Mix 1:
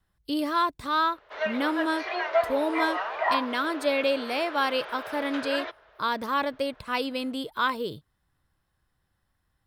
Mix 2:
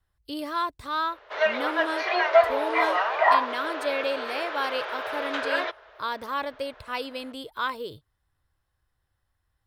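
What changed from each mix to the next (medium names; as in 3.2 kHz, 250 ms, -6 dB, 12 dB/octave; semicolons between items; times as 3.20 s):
background +9.0 dB; master: add FFT filter 100 Hz 0 dB, 180 Hz -11 dB, 450 Hz -3 dB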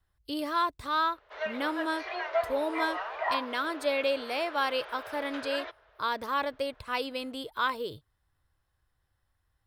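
background -11.0 dB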